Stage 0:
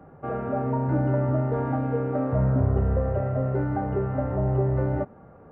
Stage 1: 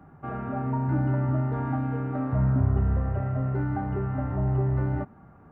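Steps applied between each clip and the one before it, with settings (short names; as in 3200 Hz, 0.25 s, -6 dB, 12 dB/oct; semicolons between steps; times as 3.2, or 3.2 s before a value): bell 510 Hz -14 dB 0.64 oct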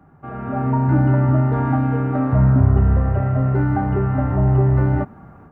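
AGC gain up to 9.5 dB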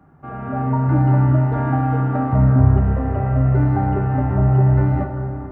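reverb RT60 3.5 s, pre-delay 13 ms, DRR 5 dB; gain -1 dB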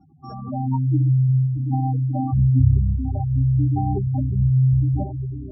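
sample sorter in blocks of 8 samples; spectral gate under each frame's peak -10 dB strong; gain -2 dB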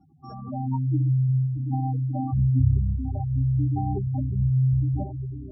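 resonator 330 Hz, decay 0.91 s, mix 40%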